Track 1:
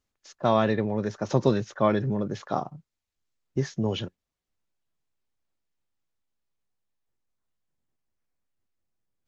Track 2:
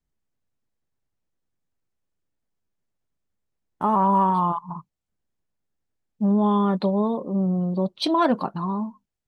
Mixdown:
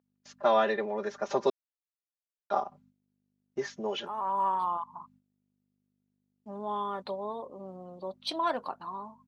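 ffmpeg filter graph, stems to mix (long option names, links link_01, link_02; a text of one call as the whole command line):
ffmpeg -i stem1.wav -i stem2.wav -filter_complex "[0:a]highshelf=frequency=3300:gain=-8,aecho=1:1:5:0.96,aeval=exprs='val(0)+0.0158*(sin(2*PI*50*n/s)+sin(2*PI*2*50*n/s)/2+sin(2*PI*3*50*n/s)/3+sin(2*PI*4*50*n/s)/4+sin(2*PI*5*50*n/s)/5)':channel_layout=same,volume=-1dB,asplit=3[link_01][link_02][link_03];[link_01]atrim=end=1.5,asetpts=PTS-STARTPTS,afade=type=out:start_time=1.496:duration=0.004:curve=hsin[link_04];[link_02]atrim=start=1.5:end=2.5,asetpts=PTS-STARTPTS,volume=0[link_05];[link_03]atrim=start=2.5,asetpts=PTS-STARTPTS,afade=type=in:duration=0.004:curve=hsin[link_06];[link_04][link_05][link_06]concat=n=3:v=0:a=1,asplit=2[link_07][link_08];[1:a]adelay=250,volume=2.5dB[link_09];[link_08]apad=whole_len=420179[link_10];[link_09][link_10]sidechaincompress=threshold=-47dB:ratio=4:attack=16:release=476[link_11];[link_07][link_11]amix=inputs=2:normalize=0,highpass=550,agate=range=-17dB:threshold=-60dB:ratio=16:detection=peak" out.wav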